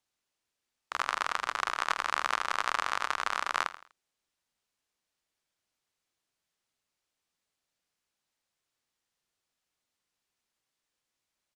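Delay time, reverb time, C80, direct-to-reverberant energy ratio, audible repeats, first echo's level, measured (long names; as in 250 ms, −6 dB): 82 ms, no reverb audible, no reverb audible, no reverb audible, 3, −15.0 dB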